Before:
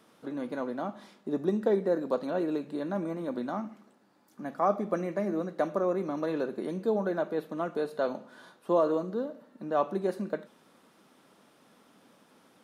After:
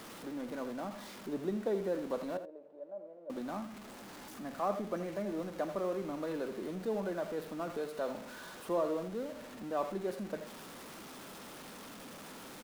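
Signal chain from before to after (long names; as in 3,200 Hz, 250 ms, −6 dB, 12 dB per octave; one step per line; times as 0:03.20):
converter with a step at zero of −35.5 dBFS
0:02.37–0:03.30: resonant band-pass 580 Hz, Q 6.8
single-tap delay 81 ms −12 dB
level −8.5 dB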